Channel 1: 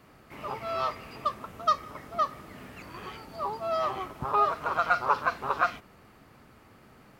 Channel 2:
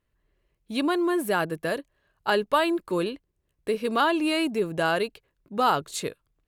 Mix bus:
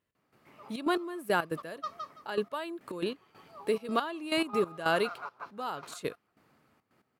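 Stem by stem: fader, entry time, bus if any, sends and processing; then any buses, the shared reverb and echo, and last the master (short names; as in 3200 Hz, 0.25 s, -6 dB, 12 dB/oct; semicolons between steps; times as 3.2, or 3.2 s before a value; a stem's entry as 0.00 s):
-5.0 dB, 0.15 s, no send, echo send -11 dB, tremolo 0.67 Hz, depth 59%; auto duck -7 dB, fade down 0.65 s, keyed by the second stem
-2.5 dB, 0.00 s, no send, no echo send, dry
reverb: off
echo: feedback echo 0.169 s, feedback 21%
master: HPF 120 Hz 12 dB/oct; step gate "x..xxxx.x...x." 139 bpm -12 dB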